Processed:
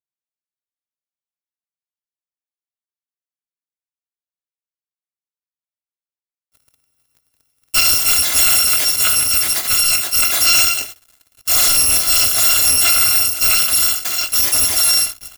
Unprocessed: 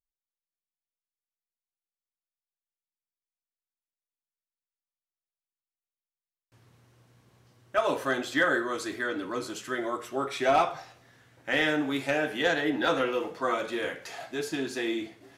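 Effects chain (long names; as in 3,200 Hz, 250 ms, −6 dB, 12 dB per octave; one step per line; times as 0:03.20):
samples in bit-reversed order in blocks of 256 samples
high-pass filter 93 Hz 12 dB per octave
leveller curve on the samples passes 5
level +4 dB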